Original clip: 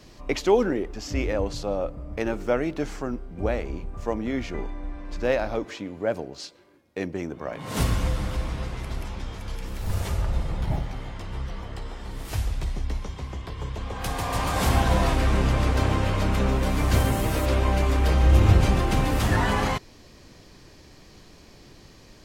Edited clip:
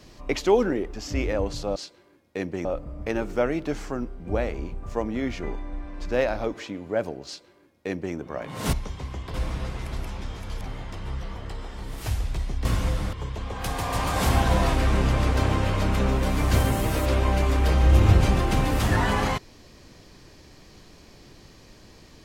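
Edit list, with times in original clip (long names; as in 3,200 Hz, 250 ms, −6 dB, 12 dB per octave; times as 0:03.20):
0:06.37–0:07.26: duplicate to 0:01.76
0:07.84–0:08.32: swap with 0:12.92–0:13.53
0:09.59–0:10.88: remove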